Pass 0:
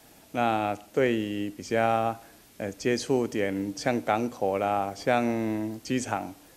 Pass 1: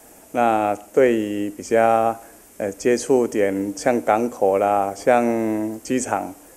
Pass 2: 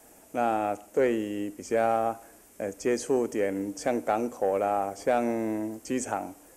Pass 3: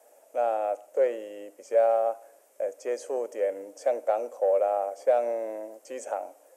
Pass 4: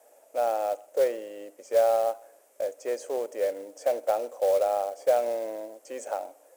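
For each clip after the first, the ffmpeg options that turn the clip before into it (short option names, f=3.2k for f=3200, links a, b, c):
-af "equalizer=f=125:t=o:w=1:g=-8,equalizer=f=500:t=o:w=1:g=4,equalizer=f=4k:t=o:w=1:g=-12,equalizer=f=8k:t=o:w=1:g=7,volume=6.5dB"
-af "asoftclip=type=tanh:threshold=-6.5dB,volume=-7.5dB"
-af "highpass=f=560:t=q:w=5.8,volume=-8.5dB"
-af "acrusher=bits=5:mode=log:mix=0:aa=0.000001"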